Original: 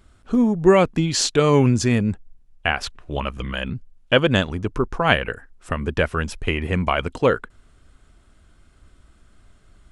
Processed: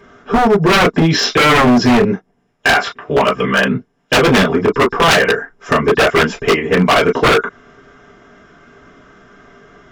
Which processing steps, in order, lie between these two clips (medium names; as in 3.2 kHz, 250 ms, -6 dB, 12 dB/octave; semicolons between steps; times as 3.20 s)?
knee-point frequency compression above 3.5 kHz 1.5:1; 2.04–4.23 s: high-pass 120 Hz 6 dB/octave; in parallel at -1 dB: compression 6:1, threshold -27 dBFS, peak gain reduction 17 dB; 6.52–6.99 s: on the sum: expander -16 dBFS; hard clipper -12 dBFS, distortion -11 dB; reverberation, pre-delay 3 ms, DRR -5.5 dB; wavefolder -5 dBFS